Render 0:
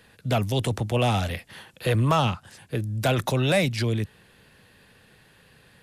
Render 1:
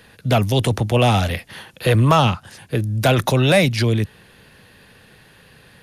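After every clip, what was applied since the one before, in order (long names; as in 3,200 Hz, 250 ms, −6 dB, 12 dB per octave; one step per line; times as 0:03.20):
notch filter 7,700 Hz, Q 8.5
level +7 dB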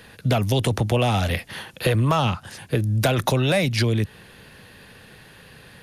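downward compressor 6 to 1, threshold −19 dBFS, peak gain reduction 8.5 dB
level +2 dB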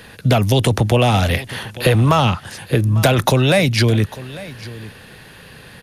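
single-tap delay 849 ms −18 dB
level +6 dB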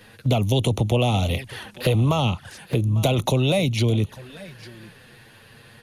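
flanger swept by the level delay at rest 11.1 ms, full sweep at −13.5 dBFS
level −5 dB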